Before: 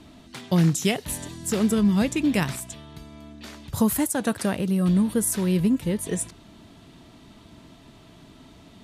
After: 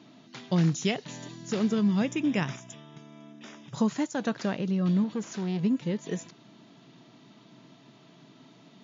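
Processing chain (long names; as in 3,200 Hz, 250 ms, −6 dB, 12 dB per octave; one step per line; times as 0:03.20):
0:02.00–0:03.75: Butterworth band-reject 4,300 Hz, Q 3.8
0:05.04–0:05.63: tube saturation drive 21 dB, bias 0.4
brick-wall band-pass 110–7,200 Hz
level −4.5 dB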